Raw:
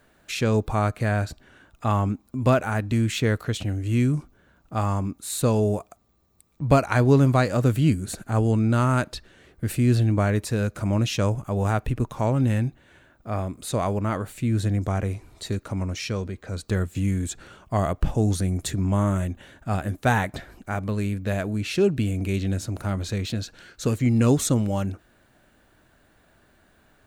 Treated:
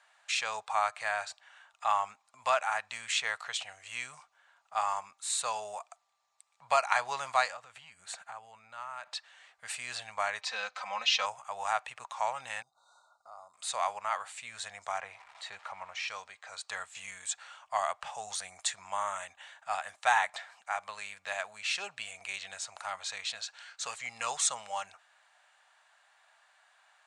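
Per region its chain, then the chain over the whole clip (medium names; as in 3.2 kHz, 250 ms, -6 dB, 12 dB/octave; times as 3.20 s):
7.50–9.15 s: tone controls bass +4 dB, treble -7 dB + compression 12:1, threshold -26 dBFS
10.41–11.26 s: high-pass 130 Hz 24 dB/octave + resonant high shelf 6.7 kHz -14 dB, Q 1.5 + comb 3.9 ms, depth 84%
12.62–13.54 s: brick-wall FIR band-stop 1.5–3.6 kHz + compression 4:1, threshold -40 dBFS
15.00–16.08 s: jump at every zero crossing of -42.5 dBFS + tone controls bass +1 dB, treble -14 dB
whole clip: elliptic band-pass 800–8400 Hz, stop band 40 dB; band-stop 1.5 kHz, Q 19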